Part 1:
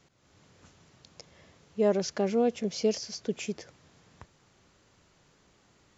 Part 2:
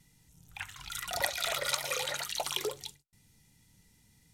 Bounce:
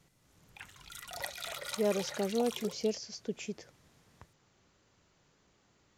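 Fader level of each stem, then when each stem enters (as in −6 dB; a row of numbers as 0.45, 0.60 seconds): −5.5, −8.5 decibels; 0.00, 0.00 seconds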